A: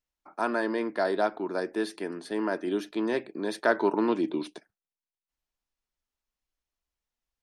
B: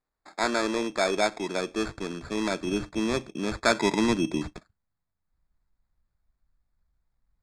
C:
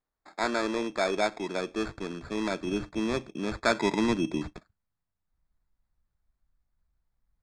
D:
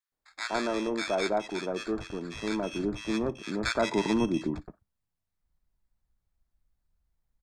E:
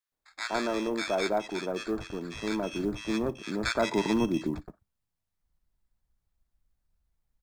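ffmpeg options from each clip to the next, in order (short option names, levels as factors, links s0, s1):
-af "acrusher=samples=15:mix=1:aa=0.000001,asubboost=boost=8:cutoff=140,lowpass=f=8000:w=0.5412,lowpass=f=8000:w=1.3066,volume=1.33"
-af "highshelf=f=6700:g=-8.5,volume=0.794"
-filter_complex "[0:a]acrossover=split=1300[s0][s1];[s0]adelay=120[s2];[s2][s1]amix=inputs=2:normalize=0"
-af "acrusher=bits=9:mode=log:mix=0:aa=0.000001"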